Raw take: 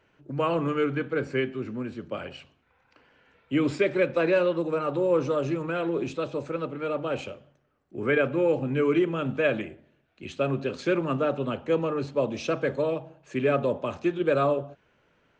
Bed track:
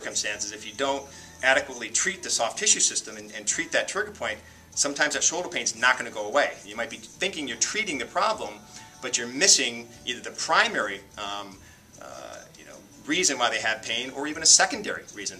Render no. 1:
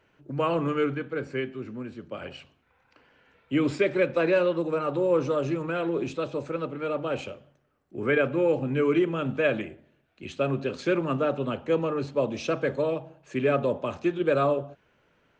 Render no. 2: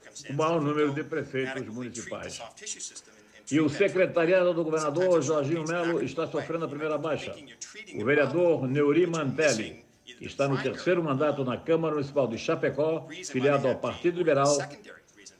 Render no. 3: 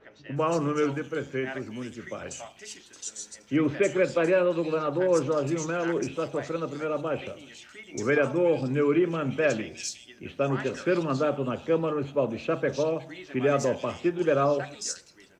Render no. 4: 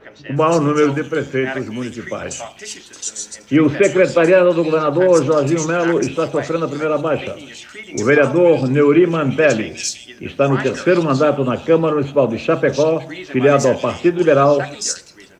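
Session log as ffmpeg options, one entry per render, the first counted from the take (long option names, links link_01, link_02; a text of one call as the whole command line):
ffmpeg -i in.wav -filter_complex "[0:a]asplit=3[link_01][link_02][link_03];[link_01]atrim=end=0.942[link_04];[link_02]atrim=start=0.938:end=2.222,asetpts=PTS-STARTPTS,volume=-3.5dB[link_05];[link_03]atrim=start=2.218[link_06];[link_04][link_05]acrossfade=duration=0.004:curve1=hsin:curve2=hsin[link_07];[link_07][link_06]acrossfade=duration=0.004:curve1=hsin:curve2=hsin" out.wav
ffmpeg -i in.wav -i bed.wav -filter_complex "[1:a]volume=-16.5dB[link_01];[0:a][link_01]amix=inputs=2:normalize=0" out.wav
ffmpeg -i in.wav -filter_complex "[0:a]acrossover=split=3300[link_01][link_02];[link_02]adelay=360[link_03];[link_01][link_03]amix=inputs=2:normalize=0" out.wav
ffmpeg -i in.wav -af "volume=11.5dB,alimiter=limit=-2dB:level=0:latency=1" out.wav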